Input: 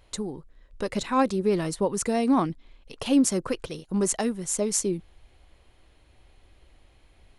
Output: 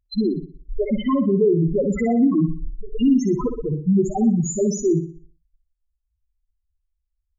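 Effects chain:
source passing by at 0:02.45, 15 m/s, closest 18 metres
treble cut that deepens with the level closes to 3,000 Hz, closed at −24.5 dBFS
leveller curve on the samples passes 1
downward compressor 1.5 to 1, threshold −35 dBFS, peak gain reduction 7 dB
leveller curve on the samples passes 5
spectral peaks only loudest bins 2
flutter between parallel walls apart 10.4 metres, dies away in 0.44 s
level +7 dB

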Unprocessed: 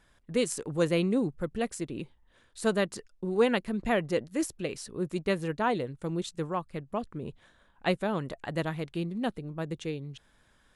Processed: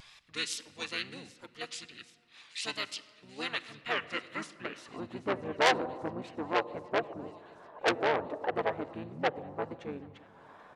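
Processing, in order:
dynamic equaliser 720 Hz, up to +7 dB, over −47 dBFS, Q 3.6
in parallel at −1 dB: upward compression, threshold −29 dBFS
on the sum: band-pass filter sweep 4,400 Hz → 890 Hz, 0:03.54–0:05.22
tape wow and flutter 75 cents
pitch-shifted copies added −12 semitones −9 dB, −7 semitones −1 dB
on a send: delay with a high-pass on its return 784 ms, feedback 72%, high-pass 1,500 Hz, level −21.5 dB
on the sum: rectangular room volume 3,600 cubic metres, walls mixed, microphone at 0.43 metres
saturating transformer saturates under 3,400 Hz

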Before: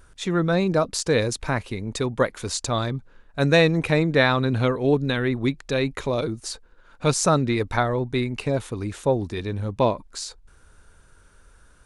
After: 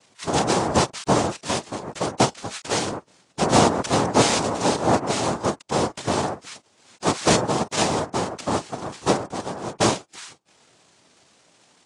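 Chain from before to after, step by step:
mid-hump overdrive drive 10 dB, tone 1,100 Hz, clips at −5 dBFS
cochlear-implant simulation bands 2
AAC 32 kbit/s 22,050 Hz

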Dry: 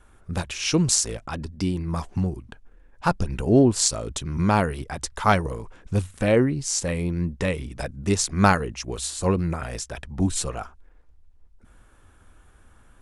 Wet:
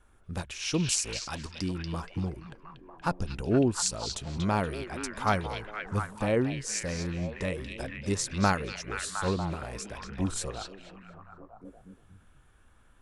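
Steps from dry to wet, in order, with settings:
0:01.15–0:01.61: high-shelf EQ 2,600 Hz +11 dB
echo through a band-pass that steps 237 ms, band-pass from 3,400 Hz, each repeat −0.7 octaves, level 0 dB
level −7.5 dB

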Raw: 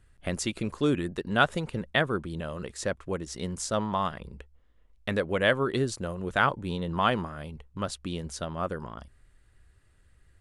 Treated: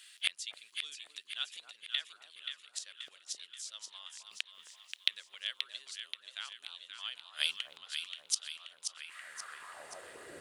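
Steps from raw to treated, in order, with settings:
gate with flip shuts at −28 dBFS, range −29 dB
delay that swaps between a low-pass and a high-pass 265 ms, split 1,100 Hz, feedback 73%, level −4 dB
high-pass filter sweep 3,300 Hz → 380 Hz, 0:08.85–0:10.32
level +17.5 dB

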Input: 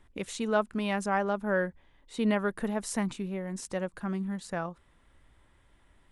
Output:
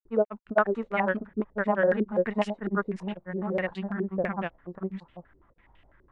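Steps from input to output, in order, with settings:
granular cloud 100 ms, grains 20 per second, spray 740 ms
low-pass on a step sequencer 12 Hz 380–2,900 Hz
level +1.5 dB

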